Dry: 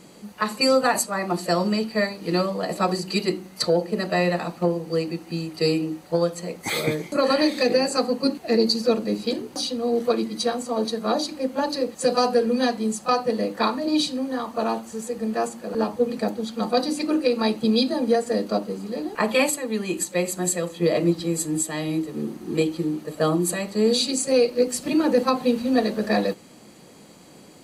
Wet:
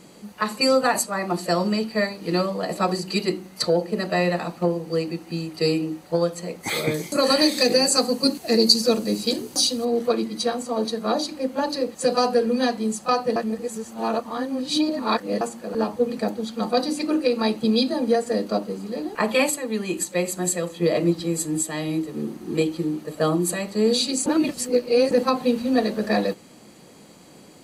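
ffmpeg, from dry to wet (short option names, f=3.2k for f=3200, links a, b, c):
-filter_complex "[0:a]asettb=1/sr,asplit=3[a][b][c];[a]atrim=end=6.944[d];[b]atrim=start=6.94:end=9.85,asetpts=PTS-STARTPTS,afade=t=in:d=0.004:c=qsin,afade=t=out:st=2.906:d=0.004:c=qsin,bass=f=250:g=2,treble=f=4k:g=12[e];[c]atrim=start=9.846[f];[d][e]acrossfade=d=0.004:c1=hsin:c2=qsin[g];[g][f]acrossfade=d=0.004:c1=qsin:c2=hsin,asplit=5[h][i][j][k][l];[h]atrim=end=13.362[m];[i]atrim=start=13.358:end=15.412,asetpts=PTS-STARTPTS,areverse[n];[j]atrim=start=15.408:end=24.262[o];[k]atrim=start=24.258:end=25.112,asetpts=PTS-STARTPTS,areverse[p];[l]atrim=start=25.108[q];[m][n]acrossfade=d=0.004:c1=hsin:c2=hsin[r];[r][o]acrossfade=d=0.004:c1=hsin:c2=hsin[s];[s][p]acrossfade=d=0.004:c1=hsin:c2=hsin[t];[t][q]acrossfade=d=0.004:c1=hsin:c2=hsin"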